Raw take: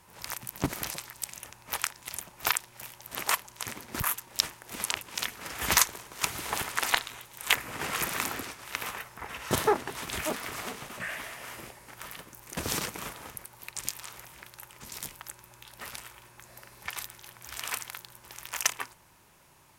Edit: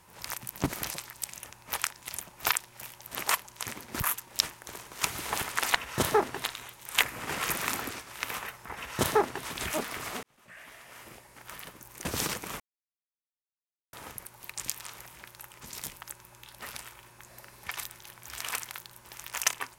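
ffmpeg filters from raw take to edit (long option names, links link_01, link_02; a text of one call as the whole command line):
ffmpeg -i in.wav -filter_complex "[0:a]asplit=6[link_01][link_02][link_03][link_04][link_05][link_06];[link_01]atrim=end=4.672[link_07];[link_02]atrim=start=5.868:end=6.962[link_08];[link_03]atrim=start=9.288:end=9.972[link_09];[link_04]atrim=start=6.958:end=10.75,asetpts=PTS-STARTPTS,afade=type=out:start_time=3.788:duration=0.004:curve=hsin[link_10];[link_05]atrim=start=10.75:end=13.12,asetpts=PTS-STARTPTS,afade=type=in:duration=1.54,afade=type=out:start_time=2.366:duration=0.004:curve=hsin,apad=pad_dur=1.33[link_11];[link_06]atrim=start=13.12,asetpts=PTS-STARTPTS,afade=type=in:duration=0.004:curve=hsin[link_12];[link_07][link_08]acrossfade=duration=0.004:curve1=hsin:curve2=hsin[link_13];[link_13][link_09]acrossfade=duration=0.004:curve1=hsin:curve2=hsin[link_14];[link_10][link_11][link_12]concat=n=3:v=0:a=1[link_15];[link_14][link_15]acrossfade=duration=0.004:curve1=hsin:curve2=hsin" out.wav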